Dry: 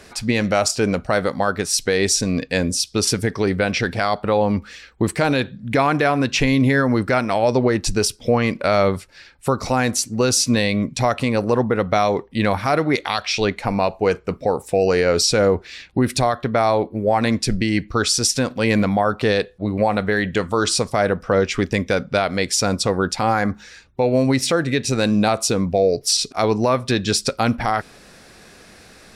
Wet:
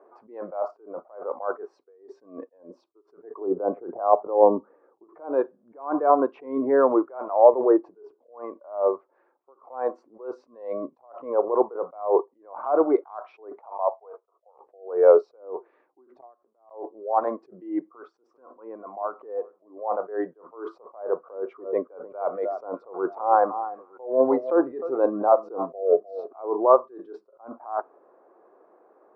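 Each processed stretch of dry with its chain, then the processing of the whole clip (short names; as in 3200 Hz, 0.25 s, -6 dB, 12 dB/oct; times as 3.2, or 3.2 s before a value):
3.41–5.04 LPF 1100 Hz + low shelf 380 Hz +7.5 dB + three-band squash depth 40%
7.77–8.96 high shelf 5400 Hz -8.5 dB + compressor 2:1, threshold -20 dBFS + notch 1300 Hz, Q 11
13.59–14.6 G.711 law mismatch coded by A + HPF 530 Hz 24 dB/oct + bell 1600 Hz -6.5 dB 0.35 oct
16.2–16.71 G.711 law mismatch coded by mu + flipped gate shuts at -14 dBFS, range -30 dB + upward compressor, threshold -60 dBFS
17.89–19.7 compressor 12:1, threshold -22 dBFS + feedback echo 0.396 s, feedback 28%, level -19 dB
21.16–26.6 low shelf 84 Hz +5 dB + echo with dull and thin repeats by turns 0.305 s, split 1400 Hz, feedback 53%, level -13.5 dB
whole clip: Chebyshev band-pass 340–1100 Hz, order 3; spectral noise reduction 10 dB; attack slew limiter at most 140 dB/s; gain +5.5 dB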